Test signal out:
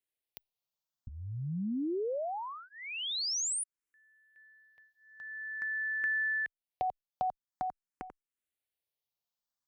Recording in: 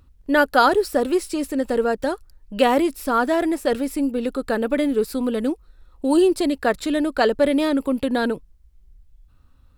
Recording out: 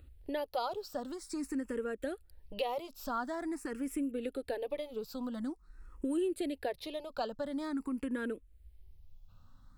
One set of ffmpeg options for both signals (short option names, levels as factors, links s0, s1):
-filter_complex "[0:a]acompressor=threshold=0.0158:ratio=3,asplit=2[s0][s1];[s1]afreqshift=0.47[s2];[s0][s2]amix=inputs=2:normalize=1"